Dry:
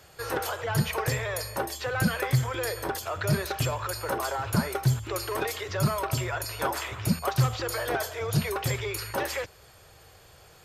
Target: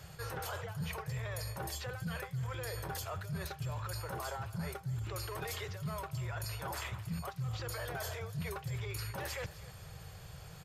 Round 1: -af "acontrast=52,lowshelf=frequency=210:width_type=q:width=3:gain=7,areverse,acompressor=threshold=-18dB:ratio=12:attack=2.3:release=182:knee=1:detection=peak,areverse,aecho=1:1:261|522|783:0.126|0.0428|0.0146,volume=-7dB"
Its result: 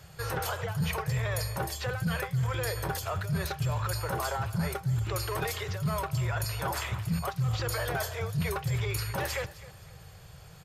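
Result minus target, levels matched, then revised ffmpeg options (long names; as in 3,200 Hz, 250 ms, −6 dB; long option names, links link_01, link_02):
downward compressor: peak gain reduction −9 dB
-af "acontrast=52,lowshelf=frequency=210:width_type=q:width=3:gain=7,areverse,acompressor=threshold=-28dB:ratio=12:attack=2.3:release=182:knee=1:detection=peak,areverse,aecho=1:1:261|522|783:0.126|0.0428|0.0146,volume=-7dB"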